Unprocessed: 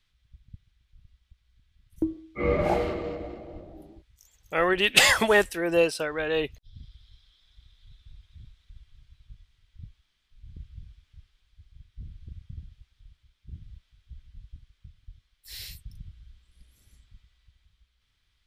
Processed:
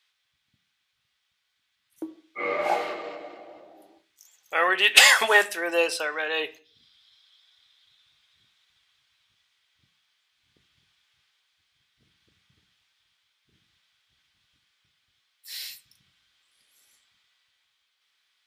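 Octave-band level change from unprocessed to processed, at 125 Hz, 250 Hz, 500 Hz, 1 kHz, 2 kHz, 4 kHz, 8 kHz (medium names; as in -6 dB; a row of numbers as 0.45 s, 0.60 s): under -20 dB, -8.5 dB, -3.0 dB, +3.0 dB, +4.5 dB, +4.0 dB, +4.0 dB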